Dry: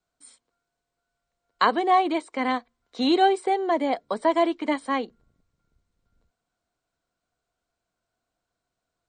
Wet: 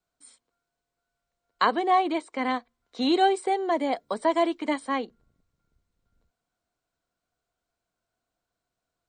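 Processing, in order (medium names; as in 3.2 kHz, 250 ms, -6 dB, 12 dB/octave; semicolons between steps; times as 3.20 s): 3.14–4.85 s: treble shelf 7.9 kHz +9 dB; trim -2 dB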